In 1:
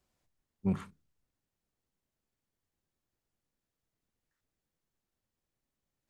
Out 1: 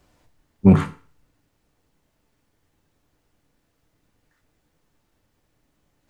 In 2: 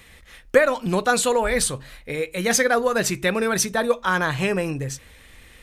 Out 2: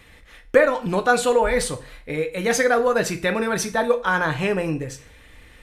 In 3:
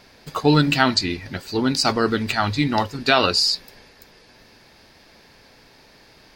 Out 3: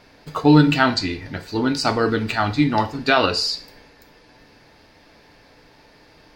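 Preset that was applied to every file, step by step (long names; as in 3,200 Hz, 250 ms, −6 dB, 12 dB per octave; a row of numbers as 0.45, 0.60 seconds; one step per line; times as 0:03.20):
high-shelf EQ 3,600 Hz −8 dB
feedback delay network reverb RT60 0.42 s, low-frequency decay 0.8×, high-frequency decay 0.95×, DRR 7 dB
normalise the peak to −2 dBFS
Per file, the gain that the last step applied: +19.0, +0.5, +0.5 decibels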